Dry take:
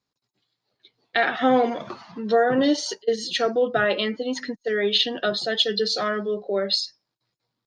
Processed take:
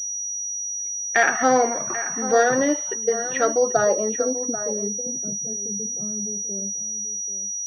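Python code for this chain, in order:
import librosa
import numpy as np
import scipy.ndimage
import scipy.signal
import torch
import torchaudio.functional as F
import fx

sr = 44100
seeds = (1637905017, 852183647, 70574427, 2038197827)

y = fx.dynamic_eq(x, sr, hz=240.0, q=1.1, threshold_db=-31.0, ratio=4.0, max_db=-5)
y = fx.filter_sweep_lowpass(y, sr, from_hz=1900.0, to_hz=170.0, start_s=3.32, end_s=5.04, q=1.6)
y = y + 10.0 ** (-12.5 / 20.0) * np.pad(y, (int(787 * sr / 1000.0), 0))[:len(y)]
y = fx.pwm(y, sr, carrier_hz=5800.0)
y = F.gain(torch.from_numpy(y), 1.5).numpy()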